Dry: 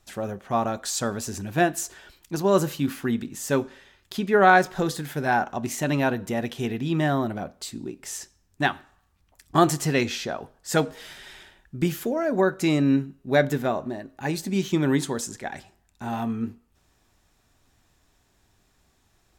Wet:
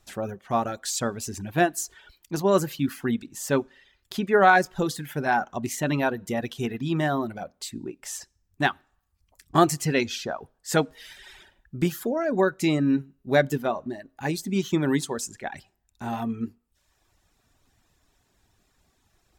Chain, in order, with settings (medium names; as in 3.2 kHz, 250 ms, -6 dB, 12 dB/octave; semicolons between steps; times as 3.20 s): reverb removal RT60 0.8 s